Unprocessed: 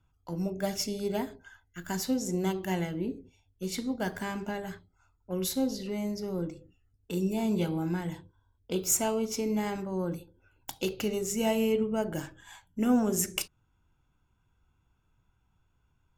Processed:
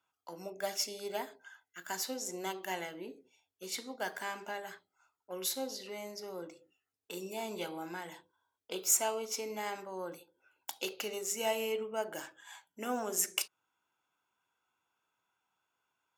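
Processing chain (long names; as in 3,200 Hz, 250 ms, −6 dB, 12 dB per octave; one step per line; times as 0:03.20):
high-pass filter 580 Hz 12 dB per octave
level −1 dB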